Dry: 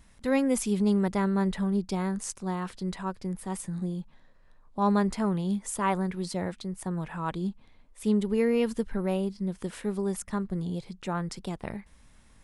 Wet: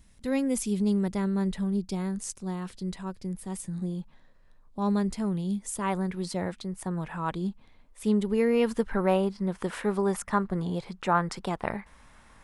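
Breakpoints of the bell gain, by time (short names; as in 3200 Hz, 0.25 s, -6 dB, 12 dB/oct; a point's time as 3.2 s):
bell 1100 Hz 2.4 oct
3.65 s -7 dB
4 s +2 dB
5.03 s -8.5 dB
5.56 s -8.5 dB
6.22 s +1.5 dB
8.47 s +1.5 dB
8.92 s +11 dB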